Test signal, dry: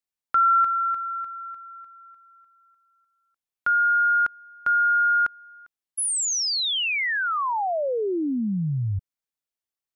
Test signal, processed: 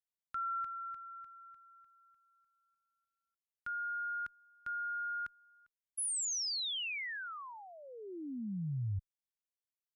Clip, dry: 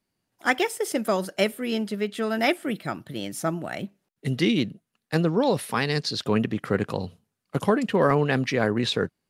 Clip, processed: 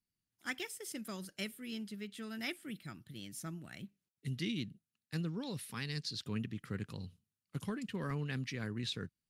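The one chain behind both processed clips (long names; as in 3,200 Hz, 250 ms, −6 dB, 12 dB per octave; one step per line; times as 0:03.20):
guitar amp tone stack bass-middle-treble 6-0-2
level +3.5 dB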